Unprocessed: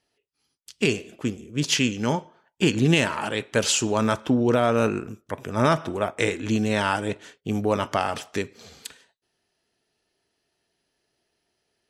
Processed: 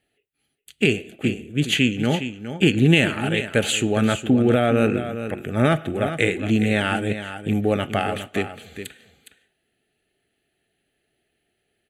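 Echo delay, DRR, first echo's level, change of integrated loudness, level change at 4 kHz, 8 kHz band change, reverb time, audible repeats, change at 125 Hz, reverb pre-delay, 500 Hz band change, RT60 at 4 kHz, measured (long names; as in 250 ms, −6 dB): 412 ms, no reverb audible, −10.5 dB, +2.5 dB, +2.0 dB, −3.5 dB, no reverb audible, 1, +4.5 dB, no reverb audible, +2.0 dB, no reverb audible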